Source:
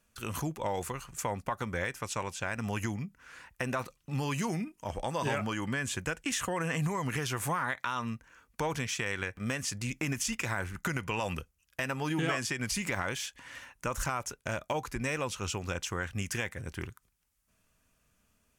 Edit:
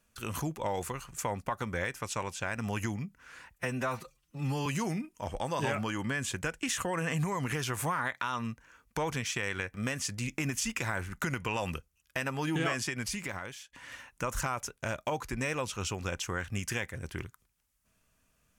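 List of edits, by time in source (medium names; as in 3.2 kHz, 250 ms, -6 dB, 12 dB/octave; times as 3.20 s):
3.55–4.29 s: stretch 1.5×
12.43–13.36 s: fade out linear, to -15 dB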